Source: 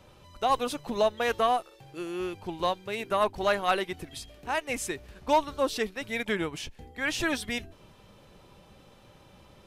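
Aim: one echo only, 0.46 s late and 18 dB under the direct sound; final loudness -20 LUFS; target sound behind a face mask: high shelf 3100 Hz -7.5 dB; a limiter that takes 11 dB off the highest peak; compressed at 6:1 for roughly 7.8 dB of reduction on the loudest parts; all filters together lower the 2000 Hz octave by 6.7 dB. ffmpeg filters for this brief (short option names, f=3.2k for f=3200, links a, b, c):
-af "equalizer=f=2k:t=o:g=-6,acompressor=threshold=-28dB:ratio=6,alimiter=level_in=5.5dB:limit=-24dB:level=0:latency=1,volume=-5.5dB,highshelf=f=3.1k:g=-7.5,aecho=1:1:460:0.126,volume=21dB"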